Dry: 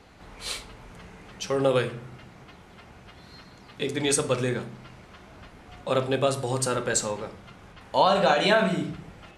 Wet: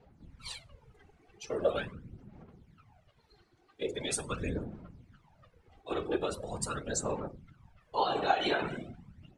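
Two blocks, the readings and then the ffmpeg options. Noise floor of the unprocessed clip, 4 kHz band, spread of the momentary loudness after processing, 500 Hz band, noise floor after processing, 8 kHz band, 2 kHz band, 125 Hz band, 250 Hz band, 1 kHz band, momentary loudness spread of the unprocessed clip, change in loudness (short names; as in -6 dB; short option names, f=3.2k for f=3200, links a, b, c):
-50 dBFS, -9.0 dB, 21 LU, -9.5 dB, -68 dBFS, -9.0 dB, -9.5 dB, -11.0 dB, -9.0 dB, -7.5 dB, 17 LU, -9.0 dB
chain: -af "aphaser=in_gain=1:out_gain=1:delay=2.7:decay=0.64:speed=0.42:type=sinusoidal,afftfilt=real='hypot(re,im)*cos(2*PI*random(0))':imag='hypot(re,im)*sin(2*PI*random(1))':win_size=512:overlap=0.75,afftdn=nr=12:nf=-43,volume=-5dB"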